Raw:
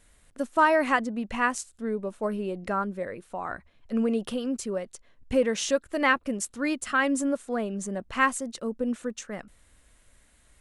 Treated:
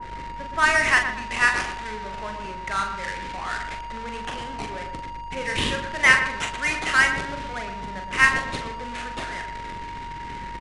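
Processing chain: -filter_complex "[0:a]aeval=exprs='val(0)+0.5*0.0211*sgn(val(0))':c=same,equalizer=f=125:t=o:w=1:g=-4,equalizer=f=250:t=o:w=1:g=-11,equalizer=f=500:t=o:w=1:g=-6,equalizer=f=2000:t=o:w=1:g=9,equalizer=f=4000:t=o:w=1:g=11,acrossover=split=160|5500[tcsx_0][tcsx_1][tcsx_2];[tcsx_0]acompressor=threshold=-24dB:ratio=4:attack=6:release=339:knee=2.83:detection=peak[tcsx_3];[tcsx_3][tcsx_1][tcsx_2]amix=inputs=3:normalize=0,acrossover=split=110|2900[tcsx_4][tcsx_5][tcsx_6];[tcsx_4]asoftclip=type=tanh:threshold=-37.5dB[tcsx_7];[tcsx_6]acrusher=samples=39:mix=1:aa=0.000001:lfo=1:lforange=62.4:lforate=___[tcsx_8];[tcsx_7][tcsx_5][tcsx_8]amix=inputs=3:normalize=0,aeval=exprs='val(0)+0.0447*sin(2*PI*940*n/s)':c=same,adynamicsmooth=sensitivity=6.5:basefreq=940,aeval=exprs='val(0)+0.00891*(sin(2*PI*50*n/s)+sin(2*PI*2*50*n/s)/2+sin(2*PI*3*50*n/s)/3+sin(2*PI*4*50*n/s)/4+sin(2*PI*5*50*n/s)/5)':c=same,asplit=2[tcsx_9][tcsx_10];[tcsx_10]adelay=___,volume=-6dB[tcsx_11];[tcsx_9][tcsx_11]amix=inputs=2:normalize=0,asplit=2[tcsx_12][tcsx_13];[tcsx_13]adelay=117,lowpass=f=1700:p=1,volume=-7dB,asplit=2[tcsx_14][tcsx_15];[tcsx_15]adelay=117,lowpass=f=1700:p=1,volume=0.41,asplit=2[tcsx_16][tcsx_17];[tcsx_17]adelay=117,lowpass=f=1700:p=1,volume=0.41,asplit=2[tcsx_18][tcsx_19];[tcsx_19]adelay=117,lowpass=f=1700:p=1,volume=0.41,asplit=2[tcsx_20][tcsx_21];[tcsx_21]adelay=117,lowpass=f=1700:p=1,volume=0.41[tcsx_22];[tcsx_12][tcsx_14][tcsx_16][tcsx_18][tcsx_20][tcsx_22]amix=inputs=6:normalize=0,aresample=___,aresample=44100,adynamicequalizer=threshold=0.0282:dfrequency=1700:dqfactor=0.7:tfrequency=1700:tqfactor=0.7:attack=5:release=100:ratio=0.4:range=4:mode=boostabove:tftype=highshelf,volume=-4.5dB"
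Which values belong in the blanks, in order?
0.42, 42, 22050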